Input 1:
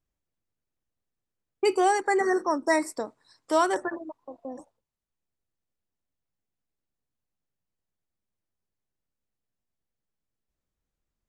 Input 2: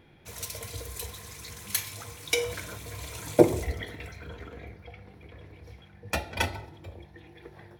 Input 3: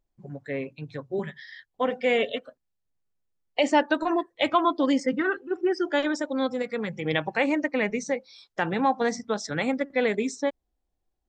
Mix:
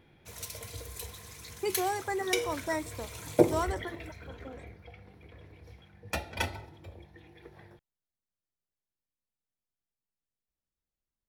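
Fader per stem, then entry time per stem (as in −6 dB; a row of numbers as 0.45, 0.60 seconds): −9.0 dB, −4.0 dB, muted; 0.00 s, 0.00 s, muted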